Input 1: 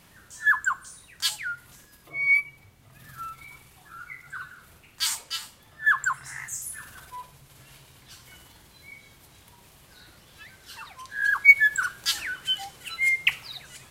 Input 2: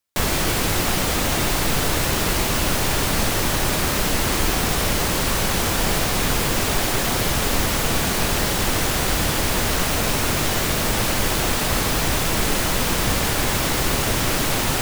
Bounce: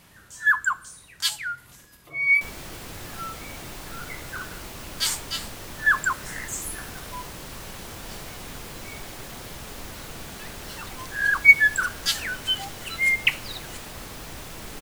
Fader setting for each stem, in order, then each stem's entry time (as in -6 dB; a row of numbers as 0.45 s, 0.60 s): +1.5 dB, -18.0 dB; 0.00 s, 2.25 s